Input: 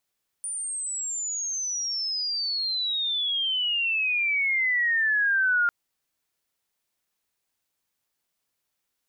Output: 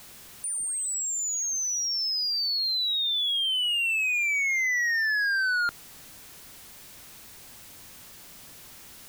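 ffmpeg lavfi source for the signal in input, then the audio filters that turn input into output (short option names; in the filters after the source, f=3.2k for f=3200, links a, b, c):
-f lavfi -i "aevalsrc='pow(10,(-29+10*t/5.25)/20)*sin(2*PI*9400*5.25/log(1400/9400)*(exp(log(1400/9400)*t/5.25)-1))':d=5.25:s=44100"
-filter_complex "[0:a]aeval=exprs='val(0)+0.5*0.00841*sgn(val(0))':c=same,acrossover=split=280|3600[a][b][c];[a]acontrast=76[d];[d][b][c]amix=inputs=3:normalize=0,volume=24dB,asoftclip=hard,volume=-24dB"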